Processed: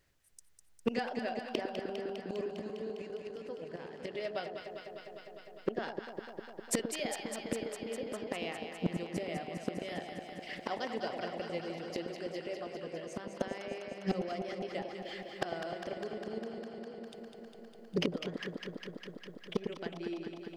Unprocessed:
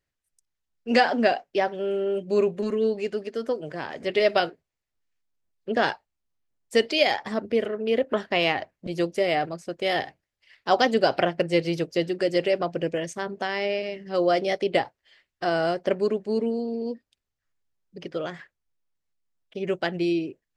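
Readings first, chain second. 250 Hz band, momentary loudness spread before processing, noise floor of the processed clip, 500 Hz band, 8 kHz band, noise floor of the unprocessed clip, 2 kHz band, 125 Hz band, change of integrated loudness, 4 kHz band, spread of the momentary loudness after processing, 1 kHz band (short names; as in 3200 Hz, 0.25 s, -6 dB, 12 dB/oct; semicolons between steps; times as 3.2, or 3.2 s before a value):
-10.5 dB, 11 LU, -55 dBFS, -14.0 dB, +1.5 dB, -84 dBFS, -14.5 dB, -7.5 dB, -14.0 dB, -13.0 dB, 10 LU, -15.0 dB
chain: flipped gate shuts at -25 dBFS, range -28 dB; overloaded stage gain 31 dB; echo with dull and thin repeats by turns 0.101 s, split 870 Hz, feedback 89%, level -5.5 dB; gain +10 dB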